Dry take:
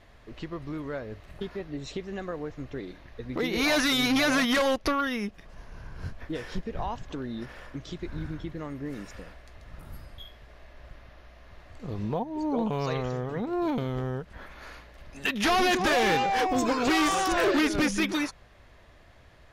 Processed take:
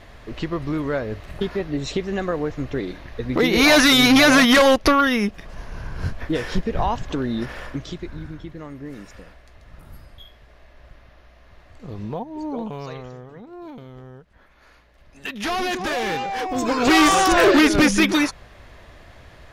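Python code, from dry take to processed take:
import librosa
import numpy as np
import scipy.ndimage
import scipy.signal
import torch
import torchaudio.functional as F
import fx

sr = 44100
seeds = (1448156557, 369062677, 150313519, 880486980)

y = fx.gain(x, sr, db=fx.line((7.67, 10.5), (8.2, 0.5), (12.43, 0.5), (13.44, -10.0), (14.47, -10.0), (15.5, -1.0), (16.44, -1.0), (16.96, 9.5)))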